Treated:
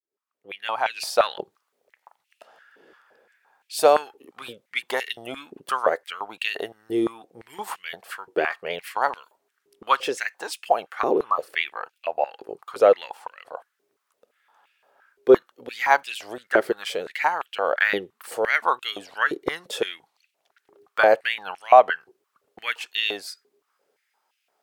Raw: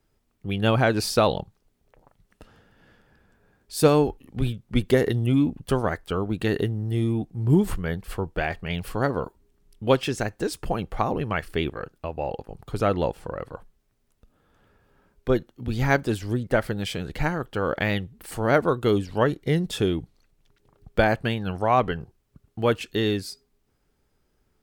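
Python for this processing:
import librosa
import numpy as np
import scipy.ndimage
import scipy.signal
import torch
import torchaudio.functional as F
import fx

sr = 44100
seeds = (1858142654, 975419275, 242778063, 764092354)

y = fx.fade_in_head(x, sr, length_s=1.51)
y = fx.spec_repair(y, sr, seeds[0], start_s=11.16, length_s=0.3, low_hz=1300.0, high_hz=3600.0, source='both')
y = fx.filter_held_highpass(y, sr, hz=5.8, low_hz=390.0, high_hz=2600.0)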